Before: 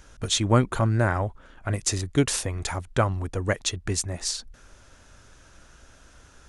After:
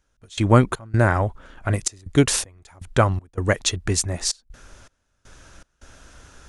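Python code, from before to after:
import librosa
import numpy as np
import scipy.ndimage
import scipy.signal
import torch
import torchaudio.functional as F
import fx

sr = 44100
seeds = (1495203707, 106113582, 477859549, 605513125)

y = fx.step_gate(x, sr, bpm=80, pattern='..xx.xxxxx.xx', floor_db=-24.0, edge_ms=4.5)
y = y * librosa.db_to_amplitude(5.0)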